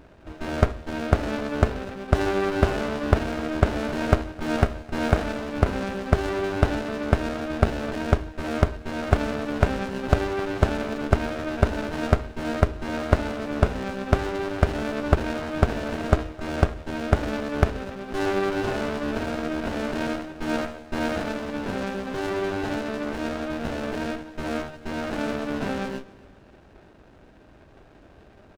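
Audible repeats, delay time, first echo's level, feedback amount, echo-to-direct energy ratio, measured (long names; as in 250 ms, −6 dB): 2, 262 ms, −22.5 dB, 41%, −21.5 dB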